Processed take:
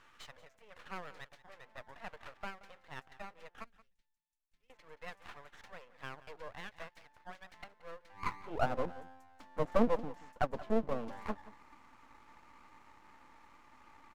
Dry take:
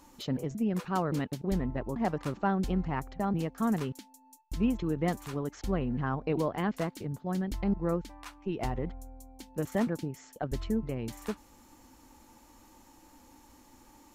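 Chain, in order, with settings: auto-wah 490–1300 Hz, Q 3.4, down, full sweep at -26.5 dBFS; bell 370 Hz -13.5 dB 0.25 oct; high-pass sweep 1800 Hz -> 190 Hz, 8.13–8.73; half-wave rectifier; 3.64–4.7 passive tone stack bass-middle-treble 10-0-1; echo 0.177 s -18 dB; gain +12.5 dB

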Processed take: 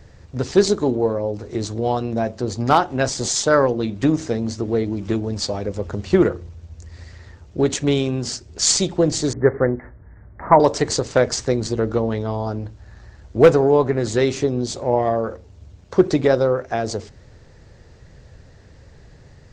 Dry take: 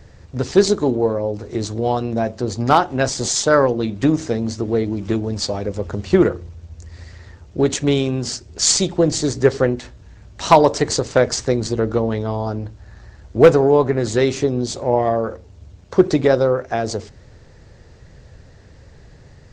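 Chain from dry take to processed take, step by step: 9.33–10.6 steep low-pass 2100 Hz 96 dB/oct; gain -1.5 dB

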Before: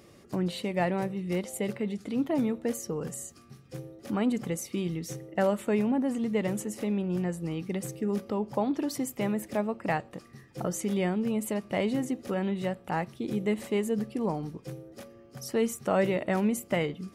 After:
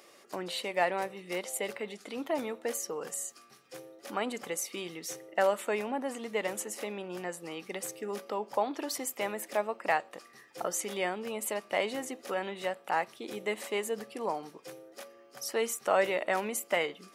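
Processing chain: HPF 590 Hz 12 dB/oct; gain +3 dB

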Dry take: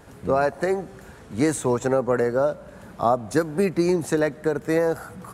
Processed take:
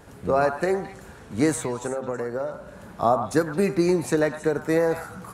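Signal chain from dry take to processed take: de-hum 131.2 Hz, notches 36; 1.53–2.54 compressor 10:1, threshold -25 dBFS, peak gain reduction 9.5 dB; delay with a stepping band-pass 0.108 s, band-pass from 1100 Hz, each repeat 1.4 oct, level -5 dB

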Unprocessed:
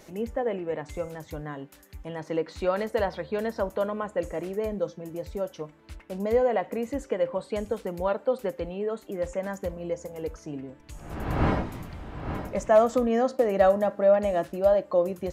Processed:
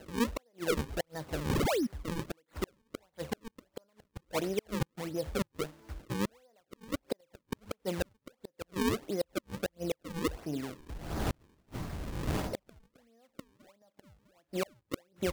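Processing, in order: flipped gate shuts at -20 dBFS, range -41 dB; painted sound fall, 1.49–1.87, 210–3000 Hz -29 dBFS; decimation with a swept rate 37×, swing 160% 1.5 Hz

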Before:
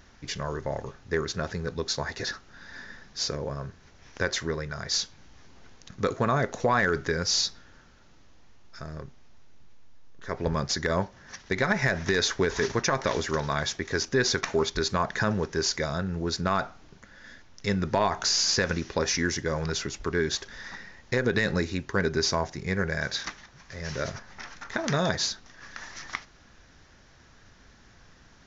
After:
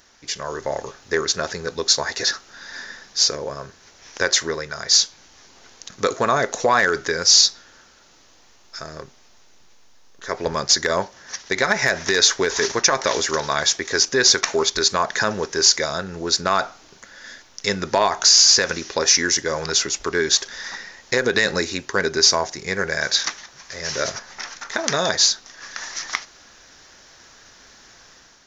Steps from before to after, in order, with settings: tone controls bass -13 dB, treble +9 dB; AGC gain up to 7 dB; gain +1 dB

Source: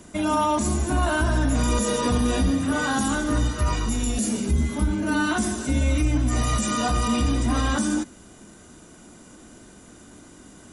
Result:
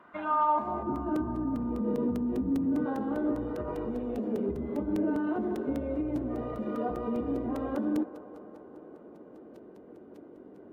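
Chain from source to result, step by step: 0.83–2.86 resonant low shelf 360 Hz +12 dB, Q 1.5; compressor 2.5:1, threshold -17 dBFS, peak gain reduction 8.5 dB; limiter -18.5 dBFS, peak gain reduction 10.5 dB; band-pass sweep 1200 Hz -> 440 Hz, 0.39–1.02; hard clip -22.5 dBFS, distortion -48 dB; air absorption 450 m; band-limited delay 0.198 s, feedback 77%, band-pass 810 Hz, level -13 dB; crackling interface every 0.20 s, samples 128, zero, from 0.96; gain +6.5 dB; Vorbis 48 kbps 44100 Hz

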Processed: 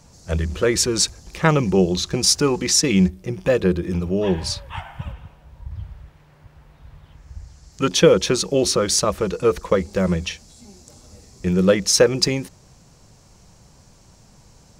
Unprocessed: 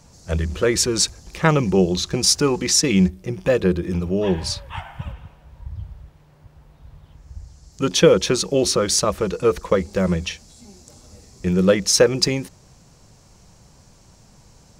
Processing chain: 5.71–7.88 bell 1900 Hz +5.5 dB 1.8 oct

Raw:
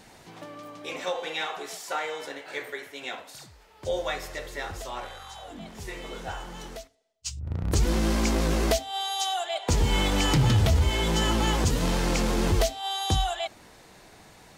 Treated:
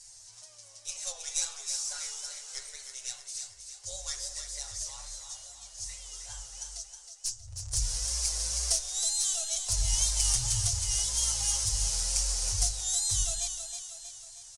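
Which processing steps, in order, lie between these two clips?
tracing distortion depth 0.33 ms; passive tone stack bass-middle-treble 10-0-10; comb 7.2 ms, depth 100%; wow and flutter 110 cents; EQ curve 100 Hz 0 dB, 160 Hz -21 dB, 560 Hz -8 dB, 1400 Hz -14 dB, 2200 Hz -15 dB, 3500 Hz -10 dB, 5700 Hz +9 dB, 9700 Hz +8 dB, 14000 Hz -29 dB; on a send: split-band echo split 330 Hz, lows 81 ms, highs 0.317 s, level -7.5 dB

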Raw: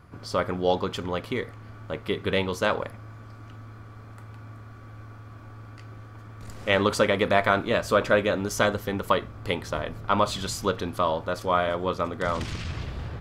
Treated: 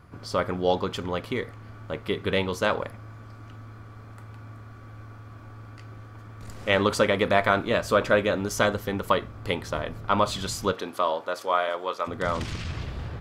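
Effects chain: 10.72–12.06 HPF 280 Hz -> 580 Hz 12 dB/oct

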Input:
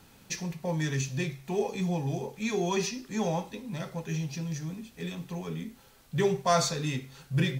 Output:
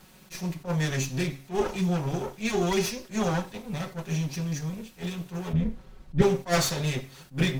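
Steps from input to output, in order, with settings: minimum comb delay 5.4 ms; 5.53–6.22 RIAA curve playback; attack slew limiter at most 290 dB/s; gain +4 dB

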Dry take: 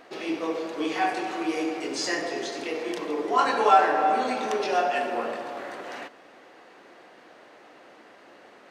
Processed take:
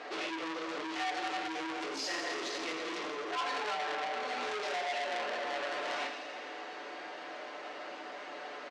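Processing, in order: high shelf 5200 Hz +9 dB; comb 6.8 ms, depth 51%; compressor 4:1, threshold -35 dBFS, peak gain reduction 20 dB; overloaded stage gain 34.5 dB; BPF 360–6600 Hz; air absorption 80 m; thin delay 83 ms, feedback 77%, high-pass 2600 Hz, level -6.5 dB; shoebox room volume 200 m³, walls furnished, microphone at 1 m; core saturation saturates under 3000 Hz; gain +5.5 dB

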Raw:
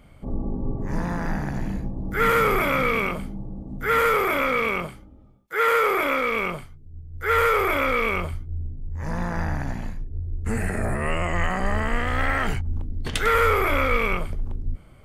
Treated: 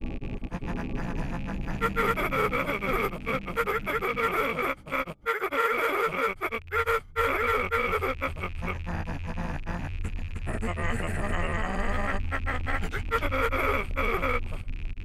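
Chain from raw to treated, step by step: rattling part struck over -37 dBFS, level -29 dBFS; grains, grains 20/s, spray 0.563 s, pitch spread up and down by 0 st; gain -3.5 dB

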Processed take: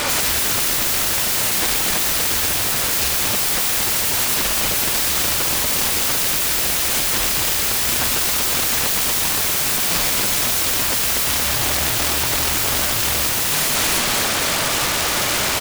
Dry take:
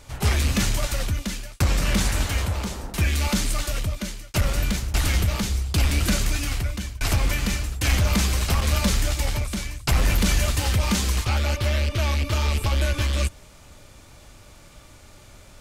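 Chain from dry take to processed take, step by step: frequency-shifting echo 0.234 s, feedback 38%, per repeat +42 Hz, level -4 dB; overdrive pedal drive 36 dB, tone 3100 Hz, clips at -7.5 dBFS; wrapped overs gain 20 dB; gain +6 dB

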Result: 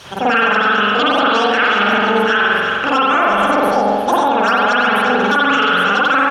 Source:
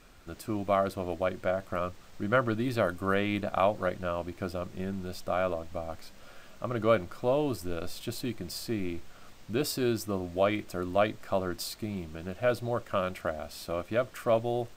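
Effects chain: HPF 48 Hz 12 dB/oct; notch 3300 Hz, Q 9.1; speed mistake 33 rpm record played at 78 rpm; reverse; upward compressor, threshold -41 dBFS; reverse; air absorption 56 m; on a send: echo 0.351 s -11.5 dB; on the sum: spring tank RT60 1.3 s, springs 44 ms, chirp 60 ms, DRR -9 dB; maximiser +18 dB; mismatched tape noise reduction encoder only; gain -4.5 dB

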